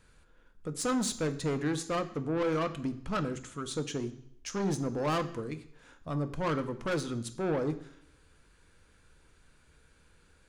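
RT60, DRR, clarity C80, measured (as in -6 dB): 0.70 s, 9.5 dB, 17.0 dB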